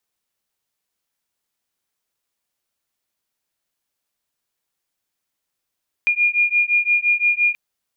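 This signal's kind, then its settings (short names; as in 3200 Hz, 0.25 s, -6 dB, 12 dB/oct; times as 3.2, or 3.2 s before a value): beating tones 2420 Hz, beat 5.8 Hz, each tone -18 dBFS 1.48 s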